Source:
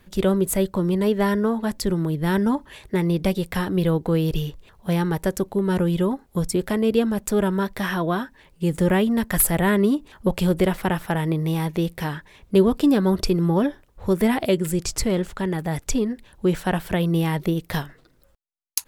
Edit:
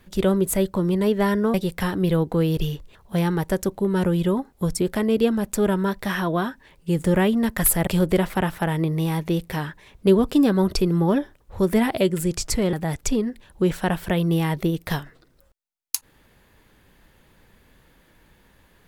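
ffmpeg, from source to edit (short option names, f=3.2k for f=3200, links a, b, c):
-filter_complex "[0:a]asplit=4[a][b][c][d];[a]atrim=end=1.542[e];[b]atrim=start=3.278:end=9.612[f];[c]atrim=start=10.348:end=15.212[g];[d]atrim=start=15.558[h];[e][f]acrossfade=d=0.004:c1=hsin:c2=hsin[i];[i][g]acrossfade=d=0.004:c1=hsin:c2=hsin[j];[j][h]acrossfade=d=0.004:c1=hsin:c2=hsin"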